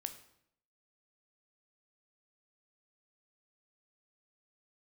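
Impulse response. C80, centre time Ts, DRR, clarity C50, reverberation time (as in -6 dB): 14.5 dB, 10 ms, 7.5 dB, 11.5 dB, 0.70 s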